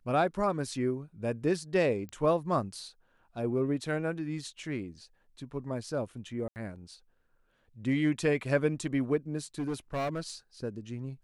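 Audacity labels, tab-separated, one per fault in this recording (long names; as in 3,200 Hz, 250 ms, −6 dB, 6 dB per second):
2.090000	2.090000	click −29 dBFS
6.480000	6.560000	drop-out 79 ms
9.580000	10.300000	clipping −29 dBFS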